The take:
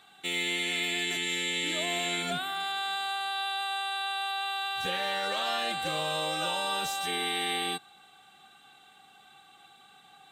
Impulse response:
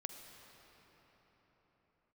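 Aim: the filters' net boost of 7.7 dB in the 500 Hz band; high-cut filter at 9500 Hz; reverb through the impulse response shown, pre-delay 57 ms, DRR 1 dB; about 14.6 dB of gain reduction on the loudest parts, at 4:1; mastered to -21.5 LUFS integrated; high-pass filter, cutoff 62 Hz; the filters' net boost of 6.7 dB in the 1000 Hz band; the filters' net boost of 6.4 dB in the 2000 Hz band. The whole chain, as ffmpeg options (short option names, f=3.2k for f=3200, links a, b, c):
-filter_complex "[0:a]highpass=62,lowpass=9.5k,equalizer=f=500:t=o:g=8,equalizer=f=1k:t=o:g=4.5,equalizer=f=2k:t=o:g=6.5,acompressor=threshold=-40dB:ratio=4,asplit=2[a][b];[1:a]atrim=start_sample=2205,adelay=57[c];[b][c]afir=irnorm=-1:irlink=0,volume=1.5dB[d];[a][d]amix=inputs=2:normalize=0,volume=15dB"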